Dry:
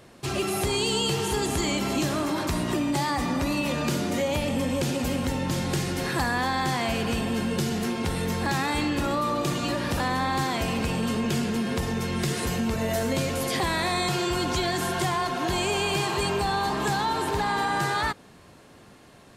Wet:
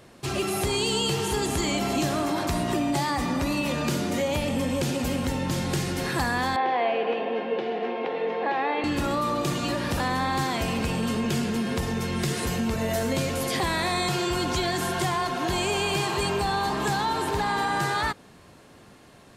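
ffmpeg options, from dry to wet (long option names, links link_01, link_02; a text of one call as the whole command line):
ffmpeg -i in.wav -filter_complex "[0:a]asettb=1/sr,asplit=3[link_01][link_02][link_03];[link_01]atrim=end=1.744[link_04];[link_02]atrim=start=1.74:end=2.99,asetpts=PTS-STARTPTS,afade=type=in:duration=0.004:curve=qsin,afade=type=out:start_time=1.246:duration=0.004:curve=qsin,aeval=exprs='val(0)+0.0251*sin(2*PI*700*n/s)':channel_layout=same[link_05];[link_03]atrim=start=2.986[link_06];[link_04][link_05]acrossfade=duration=0.004:curve1=hsin:curve2=qsin[link_07];[link_07][link_06]acrossfade=duration=0.004:curve1=qsin:curve2=hsin,asettb=1/sr,asplit=3[link_08][link_09][link_10];[link_08]atrim=end=6.564[link_11];[link_09]atrim=start=6.56:end=8.84,asetpts=PTS-STARTPTS,afade=type=in:duration=0.004:curve=qsin,afade=type=out:start_time=2.276:duration=0.004:curve=qsin,highpass=frequency=290:width=0.5412,highpass=frequency=290:width=1.3066,equalizer=frequency=340:width_type=q:width=4:gain=-4,equalizer=frequency=480:width_type=q:width=4:gain=9,equalizer=frequency=730:width_type=q:width=4:gain=7,equalizer=frequency=1400:width_type=q:width=4:gain=-6,lowpass=frequency=2900:width=0.5412,lowpass=frequency=2900:width=1.3066[link_12];[link_10]atrim=start=8.836[link_13];[link_11][link_12]acrossfade=duration=0.004:curve1=hsin:curve2=qsin[link_14];[link_14][link_13]acrossfade=duration=0.004:curve1=qsin:curve2=hsin" out.wav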